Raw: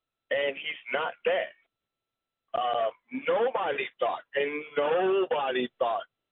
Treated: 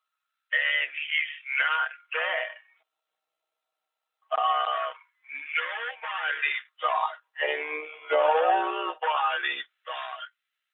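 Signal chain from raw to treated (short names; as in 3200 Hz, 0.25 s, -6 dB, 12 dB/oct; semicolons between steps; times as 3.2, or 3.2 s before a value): LFO high-pass sine 0.37 Hz 690–1800 Hz; granular stretch 1.7×, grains 31 ms; ending taper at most 520 dB/s; gain +3 dB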